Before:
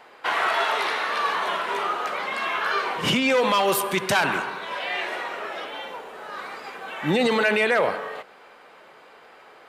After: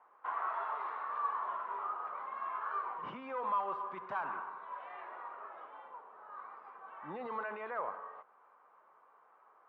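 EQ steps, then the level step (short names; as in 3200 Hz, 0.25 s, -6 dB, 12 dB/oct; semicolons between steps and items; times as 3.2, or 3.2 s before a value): band-pass 1100 Hz, Q 4.3; air absorption 110 m; tilt -3.5 dB/oct; -7.0 dB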